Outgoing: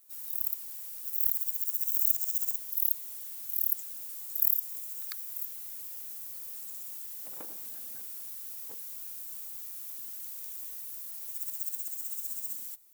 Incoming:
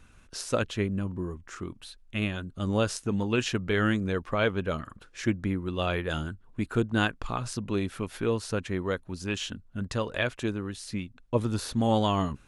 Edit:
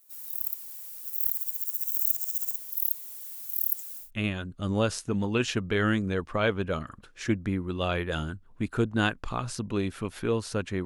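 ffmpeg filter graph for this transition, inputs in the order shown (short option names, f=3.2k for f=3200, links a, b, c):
-filter_complex "[0:a]asettb=1/sr,asplit=3[a][b][c];[a]atrim=end=3.224[d];[b]atrim=start=3.22:end=4.11,asetpts=PTS-STARTPTS,afade=t=in:d=0.004:c=qsin,afade=t=out:st=0.886:d=0.004:c=qsin,bass=f=250:g=-13,treble=f=4k:g=1[e];[c]atrim=start=4.106[f];[d][e]acrossfade=d=0.004:c1=hsin:c2=qsin[g];[g][f]acrossfade=d=0.004:c1=qsin:c2=hsin,apad=whole_dur=10.85,atrim=end=10.85,atrim=end=4.11,asetpts=PTS-STARTPTS[h];[1:a]atrim=start=1.95:end=8.83,asetpts=PTS-STARTPTS[i];[h][i]acrossfade=d=0.14:c1=tri:c2=tri"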